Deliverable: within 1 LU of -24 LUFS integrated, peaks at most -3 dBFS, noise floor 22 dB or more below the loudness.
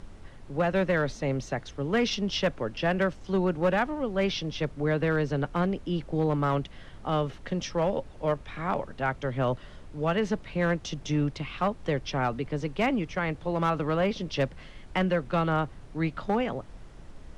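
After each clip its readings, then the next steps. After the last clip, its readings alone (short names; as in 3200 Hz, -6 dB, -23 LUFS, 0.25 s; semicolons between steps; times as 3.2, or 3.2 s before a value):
clipped 0.7%; flat tops at -18.0 dBFS; noise floor -47 dBFS; noise floor target -51 dBFS; loudness -29.0 LUFS; peak -18.0 dBFS; loudness target -24.0 LUFS
-> clip repair -18 dBFS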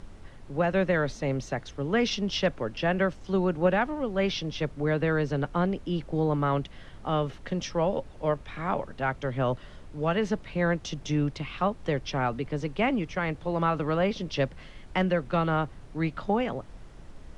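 clipped 0.0%; noise floor -47 dBFS; noise floor target -51 dBFS
-> noise print and reduce 6 dB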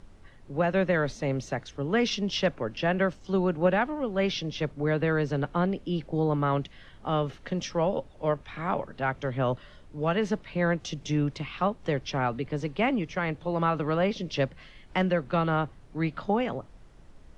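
noise floor -52 dBFS; loudness -28.5 LUFS; peak -10.5 dBFS; loudness target -24.0 LUFS
-> gain +4.5 dB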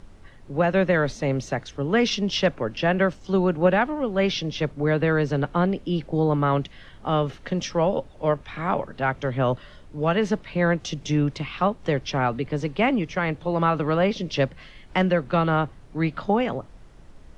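loudness -24.0 LUFS; peak -6.0 dBFS; noise floor -47 dBFS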